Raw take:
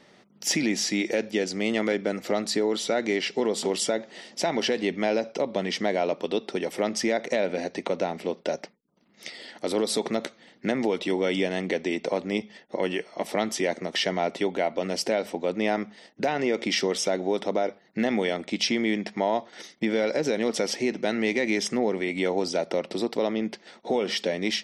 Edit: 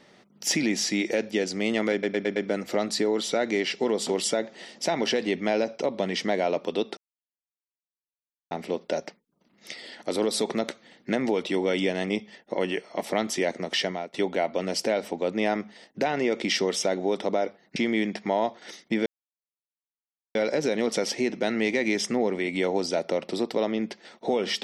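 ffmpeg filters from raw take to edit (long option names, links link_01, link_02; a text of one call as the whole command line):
ffmpeg -i in.wav -filter_complex "[0:a]asplit=11[link_01][link_02][link_03][link_04][link_05][link_06][link_07][link_08][link_09][link_10][link_11];[link_01]atrim=end=2.032[link_12];[link_02]atrim=start=1.918:end=2.032[link_13];[link_03]atrim=start=1.918:end=2.032[link_14];[link_04]atrim=start=1.918:end=2.032[link_15];[link_05]atrim=start=1.918:end=6.53,asetpts=PTS-STARTPTS,afade=type=out:start_time=4.608:duration=0.004:curve=hsin[link_16];[link_06]atrim=start=6.53:end=8.07,asetpts=PTS-STARTPTS,volume=0[link_17];[link_07]atrim=start=8.07:end=11.662,asetpts=PTS-STARTPTS,afade=type=in:duration=0.004:curve=hsin[link_18];[link_08]atrim=start=12.318:end=14.36,asetpts=PTS-STARTPTS,afade=type=out:start_time=1.692:duration=0.35:silence=0.0749894[link_19];[link_09]atrim=start=14.36:end=17.982,asetpts=PTS-STARTPTS,afade=type=in:duration=0.004:curve=hsin:silence=0.0749894[link_20];[link_10]atrim=start=18.668:end=19.97,asetpts=PTS-STARTPTS,afade=type=out:start_time=1.298:duration=0.004:curve=hsin,apad=pad_dur=1.29[link_21];[link_11]atrim=start=19.97,asetpts=PTS-STARTPTS,afade=type=in:duration=0.004:curve=hsin[link_22];[link_12][link_13]acrossfade=duration=0.004:curve1=hsin:curve2=hsin[link_23];[link_23][link_14]acrossfade=duration=0.004:curve1=hsin:curve2=hsin[link_24];[link_24][link_15]acrossfade=duration=0.004:curve1=hsin:curve2=hsin[link_25];[link_16][link_17][link_18]concat=n=3:v=0:a=1[link_26];[link_25][link_26]acrossfade=duration=0.004:curve1=hsin:curve2=hsin[link_27];[link_19][link_20]concat=n=2:v=0:a=1[link_28];[link_27][link_28]acrossfade=duration=0.004:curve1=hsin:curve2=hsin[link_29];[link_21][link_22]concat=n=2:v=0:a=1[link_30];[link_29][link_30]acrossfade=duration=0.004:curve1=hsin:curve2=hsin" out.wav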